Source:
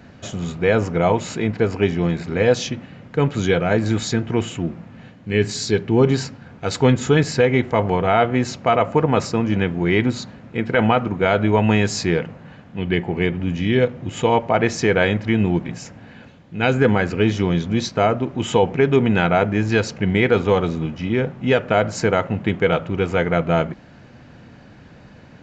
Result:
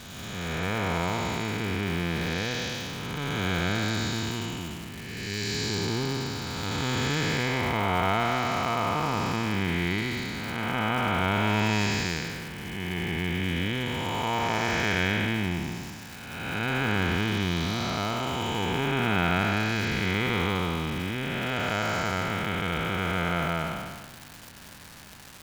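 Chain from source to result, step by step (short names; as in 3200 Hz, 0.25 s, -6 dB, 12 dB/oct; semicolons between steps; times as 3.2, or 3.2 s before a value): time blur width 0.547 s; ten-band EQ 125 Hz -6 dB, 250 Hz -4 dB, 500 Hz -11 dB, 1000 Hz +4 dB, 4000 Hz +6 dB; crackle 540/s -33 dBFS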